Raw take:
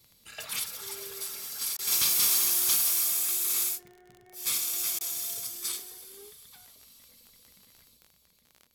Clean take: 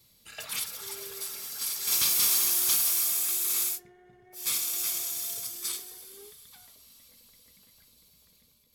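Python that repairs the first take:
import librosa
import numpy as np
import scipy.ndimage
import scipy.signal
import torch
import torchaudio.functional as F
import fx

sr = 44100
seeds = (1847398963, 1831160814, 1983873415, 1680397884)

y = fx.fix_declick_ar(x, sr, threshold=6.5)
y = fx.fix_interpolate(y, sr, at_s=(1.77, 4.99), length_ms=17.0)
y = fx.fix_level(y, sr, at_s=7.97, step_db=4.5)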